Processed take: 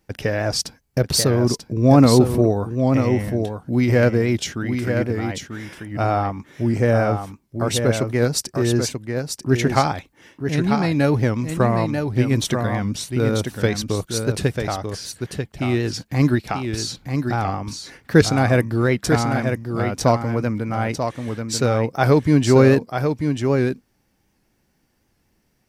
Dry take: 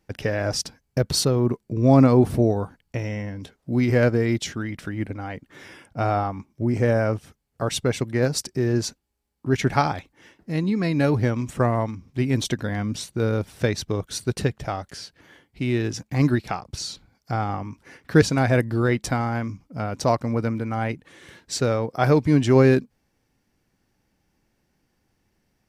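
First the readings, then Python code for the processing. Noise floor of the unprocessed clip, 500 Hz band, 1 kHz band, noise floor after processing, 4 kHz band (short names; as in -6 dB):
-72 dBFS, +3.5 dB, +3.5 dB, -66 dBFS, +4.5 dB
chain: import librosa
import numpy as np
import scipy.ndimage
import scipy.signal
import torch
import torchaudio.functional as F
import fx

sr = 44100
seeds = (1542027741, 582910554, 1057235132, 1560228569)

y = fx.high_shelf(x, sr, hz=10000.0, db=6.0)
y = y + 10.0 ** (-6.0 / 20.0) * np.pad(y, (int(940 * sr / 1000.0), 0))[:len(y)]
y = fx.record_warp(y, sr, rpm=78.0, depth_cents=100.0)
y = y * 10.0 ** (2.5 / 20.0)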